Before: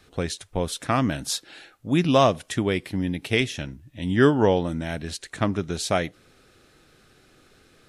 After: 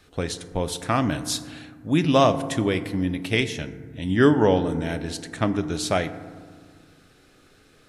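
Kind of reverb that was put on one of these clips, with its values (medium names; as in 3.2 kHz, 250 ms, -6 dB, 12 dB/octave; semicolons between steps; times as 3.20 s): FDN reverb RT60 1.7 s, low-frequency decay 1.45×, high-frequency decay 0.35×, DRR 10.5 dB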